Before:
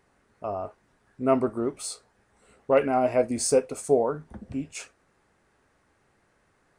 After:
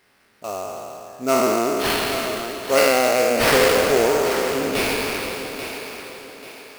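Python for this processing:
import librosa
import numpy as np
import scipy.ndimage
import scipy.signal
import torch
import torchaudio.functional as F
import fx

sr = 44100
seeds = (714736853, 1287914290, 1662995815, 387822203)

p1 = fx.spec_trails(x, sr, decay_s=2.97)
p2 = fx.weighting(p1, sr, curve='D')
p3 = fx.rider(p2, sr, range_db=10, speed_s=2.0)
p4 = p2 + (p3 * librosa.db_to_amplitude(-1.0))
p5 = fx.sample_hold(p4, sr, seeds[0], rate_hz=7100.0, jitter_pct=20)
p6 = p5 + fx.echo_thinned(p5, sr, ms=838, feedback_pct=38, hz=150.0, wet_db=-10.0, dry=0)
y = p6 * librosa.db_to_amplitude(-5.5)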